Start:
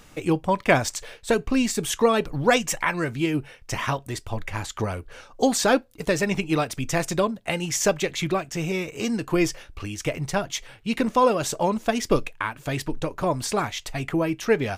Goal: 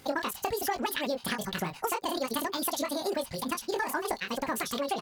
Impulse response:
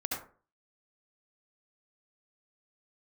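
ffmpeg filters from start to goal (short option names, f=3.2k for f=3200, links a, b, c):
-af "aecho=1:1:61|74:0.501|0.178,asetrate=76440,aresample=44100,highpass=78,asoftclip=type=tanh:threshold=-7dB,acompressor=threshold=-24dB:ratio=10,atempo=1.7,volume=-2.5dB"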